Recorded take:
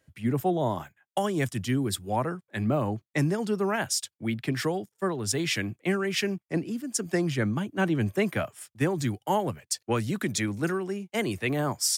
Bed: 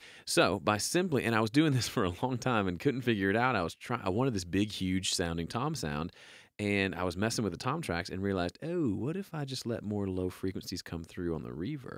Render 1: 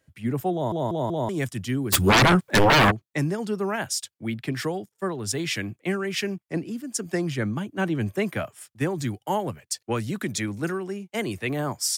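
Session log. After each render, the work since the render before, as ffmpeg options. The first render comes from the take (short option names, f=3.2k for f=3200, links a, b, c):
-filter_complex "[0:a]asplit=3[a][b][c];[a]afade=t=out:st=1.92:d=0.02[d];[b]aeval=exprs='0.224*sin(PI/2*7.94*val(0)/0.224)':c=same,afade=t=in:st=1.92:d=0.02,afade=t=out:st=2.9:d=0.02[e];[c]afade=t=in:st=2.9:d=0.02[f];[d][e][f]amix=inputs=3:normalize=0,asplit=5[g][h][i][j][k];[g]atrim=end=0.722[l];[h]atrim=start=0.528:end=0.722[m];[i]atrim=start=0.528:end=0.722[n];[j]atrim=start=0.528:end=0.722[o];[k]atrim=start=1.288[p];[l][m]acrossfade=d=0.004:c1=hsin:c2=hsin[q];[q][n]acrossfade=d=0.004:c1=hsin:c2=hsin[r];[r][o]acrossfade=d=0.004:c1=hsin:c2=hsin[s];[s][p]acrossfade=d=0.004:c1=hsin:c2=hsin"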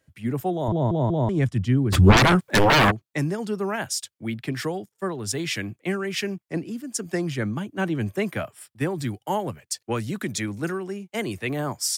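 -filter_complex "[0:a]asettb=1/sr,asplit=3[a][b][c];[a]atrim=end=0.684[d];[b]atrim=start=0.68:end=2.17,asetpts=PTS-STARTPTS,afade=t=in:d=0.004:c=qsin,afade=t=out:st=1.486:d=0.004:c=qsin,aemphasis=mode=reproduction:type=bsi[e];[c]atrim=start=2.166[f];[d][e]acrossfade=d=0.004:c1=hsin:c2=qsin[g];[g][f]acrossfade=d=0.004:c1=qsin:c2=hsin,asettb=1/sr,asplit=3[h][i][j];[h]atrim=end=8.424[k];[i]atrim=start=8.42:end=9.09,asetpts=PTS-STARTPTS,afade=t=in:d=0.004:c=qsin,afade=t=out:st=0.666:d=0.004:c=qsin,bandreject=f=6.5k:w=5.3[l];[j]atrim=start=9.086[m];[k][l]acrossfade=d=0.004:c1=hsin:c2=qsin[n];[n][m]acrossfade=d=0.004:c1=qsin:c2=hsin"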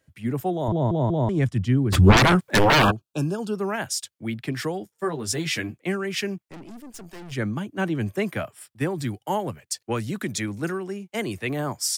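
-filter_complex "[0:a]asettb=1/sr,asplit=3[a][b][c];[a]atrim=end=2.824[d];[b]atrim=start=2.82:end=3.55,asetpts=PTS-STARTPTS,afade=t=in:d=0.004:c=qsin,afade=t=out:st=0.726:d=0.004:c=qsin,asuperstop=centerf=2000:order=12:qfactor=2.7[e];[c]atrim=start=3.546[f];[d][e]acrossfade=d=0.004:c1=hsin:c2=qsin[g];[g][f]acrossfade=d=0.004:c1=qsin:c2=hsin,asettb=1/sr,asplit=3[h][i][j];[h]atrim=end=4.804[k];[i]atrim=start=4.8:end=5.78,asetpts=PTS-STARTPTS,afade=t=in:d=0.004:c=qsin,afade=t=out:st=0.976:d=0.004:c=qsin,asplit=2[l][m];[m]adelay=13,volume=-4dB[n];[l][n]amix=inputs=2:normalize=0,atrim=end_sample=43218[o];[j]atrim=start=5.776[p];[k][o]acrossfade=d=0.004:c1=hsin:c2=qsin[q];[q][p]acrossfade=d=0.004:c1=qsin:c2=hsin,asplit=3[r][s][t];[r]afade=t=out:st=6.48:d=0.02[u];[s]aeval=exprs='(tanh(89.1*val(0)+0.65)-tanh(0.65))/89.1':c=same,afade=t=in:st=6.48:d=0.02,afade=t=out:st=7.31:d=0.02[v];[t]afade=t=in:st=7.31:d=0.02[w];[u][v][w]amix=inputs=3:normalize=0"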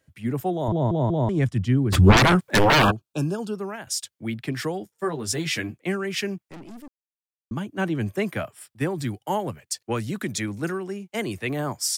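-filter_complex "[0:a]asplit=4[a][b][c][d];[a]atrim=end=3.87,asetpts=PTS-STARTPTS,afade=t=out:st=3.37:d=0.5:silence=0.266073[e];[b]atrim=start=3.87:end=6.88,asetpts=PTS-STARTPTS,afade=t=in:d=0.004:c=hsin:silence=0.266073,afade=t=out:st=3.006:d=0.004:c=hsin[f];[c]atrim=start=6.88:end=7.51,asetpts=PTS-STARTPTS,volume=0[g];[d]atrim=start=7.51,asetpts=PTS-STARTPTS,afade=t=in:d=0.004:c=hsin[h];[e][f][g][h]concat=n=4:v=0:a=1"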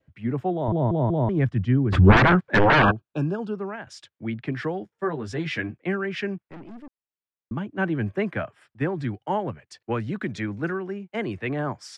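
-af "adynamicequalizer=threshold=0.00891:dfrequency=1600:dqfactor=4.8:tfrequency=1600:tqfactor=4.8:attack=5:release=100:ratio=0.375:range=2.5:mode=boostabove:tftype=bell,lowpass=2.4k"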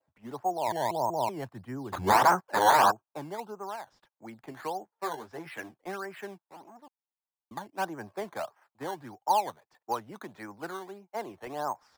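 -filter_complex "[0:a]bandpass=f=880:t=q:w=3.2:csg=0,asplit=2[a][b];[b]acrusher=samples=12:mix=1:aa=0.000001:lfo=1:lforange=12:lforate=1.6,volume=-3.5dB[c];[a][c]amix=inputs=2:normalize=0"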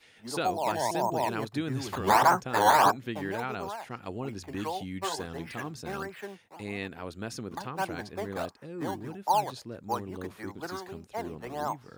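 -filter_complex "[1:a]volume=-6.5dB[a];[0:a][a]amix=inputs=2:normalize=0"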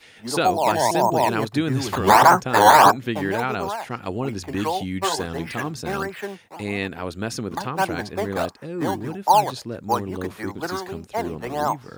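-af "volume=9.5dB,alimiter=limit=-2dB:level=0:latency=1"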